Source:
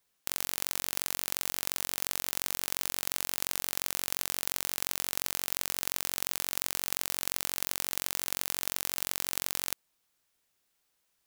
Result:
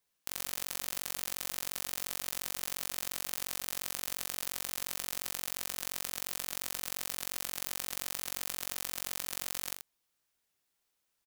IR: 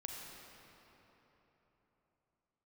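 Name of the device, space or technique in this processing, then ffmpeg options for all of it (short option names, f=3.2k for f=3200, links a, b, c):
slapback doubling: -filter_complex "[0:a]asplit=3[a][b][c];[b]adelay=18,volume=-9dB[d];[c]adelay=82,volume=-7.5dB[e];[a][d][e]amix=inputs=3:normalize=0,volume=-5.5dB"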